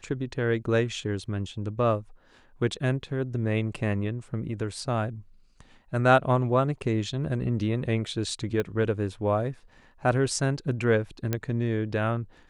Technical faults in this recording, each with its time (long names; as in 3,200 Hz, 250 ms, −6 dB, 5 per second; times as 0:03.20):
0:08.60: click −16 dBFS
0:11.33: click −12 dBFS